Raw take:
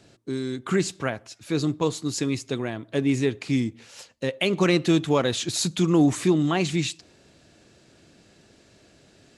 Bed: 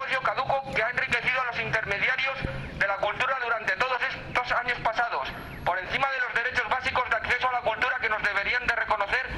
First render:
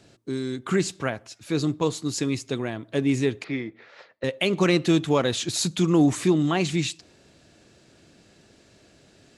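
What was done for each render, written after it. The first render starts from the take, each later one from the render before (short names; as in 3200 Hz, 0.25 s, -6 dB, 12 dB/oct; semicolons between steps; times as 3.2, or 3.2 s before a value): 3.44–4.24 speaker cabinet 220–3500 Hz, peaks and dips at 240 Hz -9 dB, 400 Hz +3 dB, 630 Hz +5 dB, 1300 Hz +5 dB, 1900 Hz +7 dB, 2900 Hz -9 dB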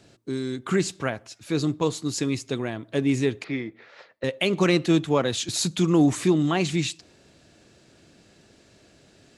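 4.86–5.49 three-band expander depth 70%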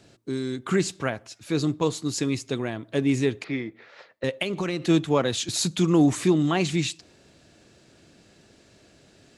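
4.42–4.83 compressor 5:1, threshold -24 dBFS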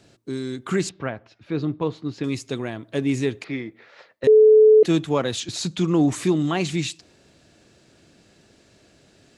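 0.89–2.24 air absorption 310 m; 4.27–4.83 bleep 432 Hz -8.5 dBFS; 5.4–6.12 air absorption 59 m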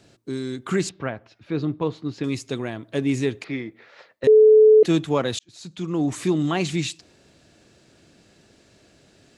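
5.39–6.45 fade in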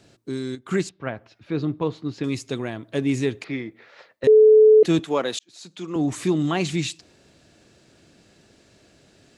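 0.55–1.07 upward expander, over -39 dBFS; 4.99–5.96 HPF 280 Hz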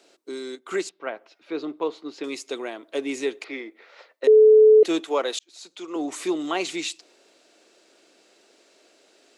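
HPF 340 Hz 24 dB/oct; notch 1700 Hz, Q 14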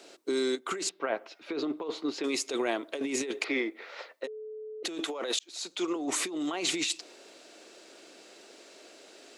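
limiter -16 dBFS, peak gain reduction 7 dB; negative-ratio compressor -33 dBFS, ratio -1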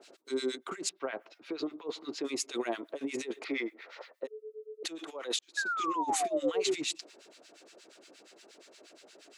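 5.57–6.75 painted sound fall 360–1700 Hz -27 dBFS; harmonic tremolo 8.5 Hz, depth 100%, crossover 1200 Hz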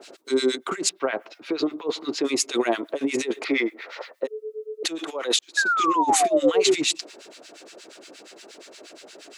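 gain +11 dB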